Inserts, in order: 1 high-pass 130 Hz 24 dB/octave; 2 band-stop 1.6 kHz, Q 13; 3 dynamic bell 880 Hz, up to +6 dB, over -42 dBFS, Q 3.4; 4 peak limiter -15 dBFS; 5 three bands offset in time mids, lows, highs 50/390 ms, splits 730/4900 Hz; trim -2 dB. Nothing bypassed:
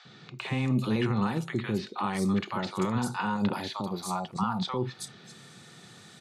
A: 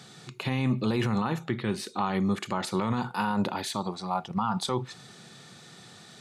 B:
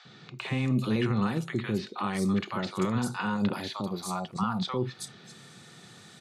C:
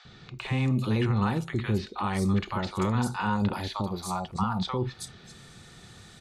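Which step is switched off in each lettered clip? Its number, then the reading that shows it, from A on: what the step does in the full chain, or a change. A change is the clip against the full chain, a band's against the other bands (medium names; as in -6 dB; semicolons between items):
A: 5, echo-to-direct -8.0 dB to none; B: 3, 1 kHz band -2.0 dB; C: 1, 125 Hz band +3.5 dB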